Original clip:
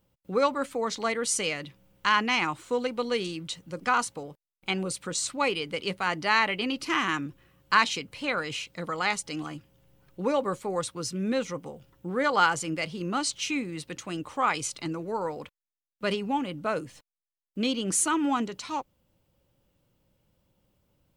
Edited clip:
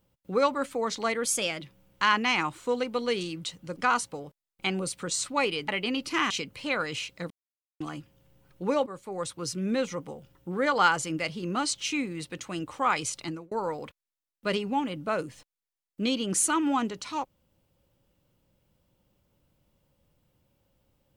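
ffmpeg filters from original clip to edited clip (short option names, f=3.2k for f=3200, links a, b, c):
-filter_complex "[0:a]asplit=9[a][b][c][d][e][f][g][h][i];[a]atrim=end=1.254[j];[b]atrim=start=1.25:end=1.65,asetpts=PTS-STARTPTS,asetrate=48510,aresample=44100,atrim=end_sample=16036,asetpts=PTS-STARTPTS[k];[c]atrim=start=1.646:end=5.722[l];[d]atrim=start=6.438:end=7.062[m];[e]atrim=start=7.878:end=8.88,asetpts=PTS-STARTPTS,afade=t=out:st=0.998:d=0.004:c=hsin[n];[f]atrim=start=8.88:end=9.38,asetpts=PTS-STARTPTS,volume=0[o];[g]atrim=start=9.38:end=10.44,asetpts=PTS-STARTPTS,afade=t=in:d=0.004:c=hsin,afade=t=out:st=1.056:d=0.004:c=hsin:silence=0.211349[p];[h]atrim=start=10.44:end=15.09,asetpts=PTS-STARTPTS,afade=t=in:d=0.61:silence=0.211349,afade=t=out:st=4.38:d=0.27[q];[i]atrim=start=15.09,asetpts=PTS-STARTPTS,afade=t=in:d=0.004:c=hsin[r];[j][k]acrossfade=d=0.004:c1=hsin:c2=hsin[s];[s][l]acrossfade=d=0.004:c1=hsin:c2=hsin[t];[t][m]acrossfade=d=0.004:c1=hsin:c2=hsin[u];[n][o][p][q][r]concat=n=5:v=0:a=1[v];[u][v]acrossfade=d=0.004:c1=hsin:c2=hsin"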